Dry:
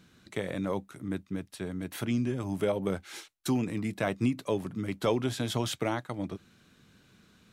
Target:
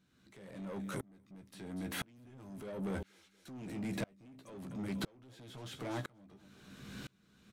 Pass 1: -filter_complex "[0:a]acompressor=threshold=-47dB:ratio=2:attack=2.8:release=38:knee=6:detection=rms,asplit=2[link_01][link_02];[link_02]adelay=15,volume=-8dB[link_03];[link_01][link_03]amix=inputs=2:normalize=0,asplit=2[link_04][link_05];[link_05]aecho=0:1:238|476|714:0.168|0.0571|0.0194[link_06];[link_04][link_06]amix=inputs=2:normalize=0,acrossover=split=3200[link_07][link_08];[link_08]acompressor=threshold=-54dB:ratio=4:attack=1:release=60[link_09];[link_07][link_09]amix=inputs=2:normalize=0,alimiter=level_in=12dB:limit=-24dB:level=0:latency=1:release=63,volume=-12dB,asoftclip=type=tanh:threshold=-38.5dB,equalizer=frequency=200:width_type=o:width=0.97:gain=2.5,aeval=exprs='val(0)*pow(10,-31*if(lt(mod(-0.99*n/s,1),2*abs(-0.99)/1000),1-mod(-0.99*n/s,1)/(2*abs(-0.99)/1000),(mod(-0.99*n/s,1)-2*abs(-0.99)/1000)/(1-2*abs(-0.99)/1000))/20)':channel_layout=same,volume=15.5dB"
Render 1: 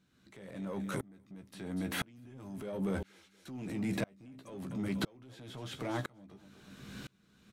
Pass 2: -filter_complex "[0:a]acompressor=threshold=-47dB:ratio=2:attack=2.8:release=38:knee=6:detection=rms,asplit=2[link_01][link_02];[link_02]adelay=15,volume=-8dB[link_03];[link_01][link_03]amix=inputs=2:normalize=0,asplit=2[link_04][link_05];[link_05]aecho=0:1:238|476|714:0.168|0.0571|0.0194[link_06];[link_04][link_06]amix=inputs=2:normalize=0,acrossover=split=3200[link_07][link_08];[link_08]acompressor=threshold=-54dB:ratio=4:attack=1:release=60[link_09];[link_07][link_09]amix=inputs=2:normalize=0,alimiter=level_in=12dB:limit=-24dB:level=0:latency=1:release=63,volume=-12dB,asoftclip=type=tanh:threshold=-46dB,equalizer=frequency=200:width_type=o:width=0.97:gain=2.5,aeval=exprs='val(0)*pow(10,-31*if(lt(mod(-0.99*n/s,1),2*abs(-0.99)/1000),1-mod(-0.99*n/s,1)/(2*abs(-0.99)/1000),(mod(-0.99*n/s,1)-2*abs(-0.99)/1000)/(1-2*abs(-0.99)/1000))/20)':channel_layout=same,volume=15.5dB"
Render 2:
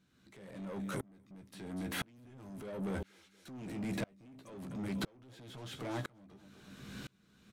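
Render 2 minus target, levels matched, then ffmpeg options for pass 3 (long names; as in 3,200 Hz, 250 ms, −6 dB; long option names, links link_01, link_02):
downward compressor: peak gain reduction −3.5 dB
-filter_complex "[0:a]acompressor=threshold=-54dB:ratio=2:attack=2.8:release=38:knee=6:detection=rms,asplit=2[link_01][link_02];[link_02]adelay=15,volume=-8dB[link_03];[link_01][link_03]amix=inputs=2:normalize=0,asplit=2[link_04][link_05];[link_05]aecho=0:1:238|476|714:0.168|0.0571|0.0194[link_06];[link_04][link_06]amix=inputs=2:normalize=0,acrossover=split=3200[link_07][link_08];[link_08]acompressor=threshold=-54dB:ratio=4:attack=1:release=60[link_09];[link_07][link_09]amix=inputs=2:normalize=0,alimiter=level_in=12dB:limit=-24dB:level=0:latency=1:release=63,volume=-12dB,asoftclip=type=tanh:threshold=-46dB,equalizer=frequency=200:width_type=o:width=0.97:gain=2.5,aeval=exprs='val(0)*pow(10,-31*if(lt(mod(-0.99*n/s,1),2*abs(-0.99)/1000),1-mod(-0.99*n/s,1)/(2*abs(-0.99)/1000),(mod(-0.99*n/s,1)-2*abs(-0.99)/1000)/(1-2*abs(-0.99)/1000))/20)':channel_layout=same,volume=15.5dB"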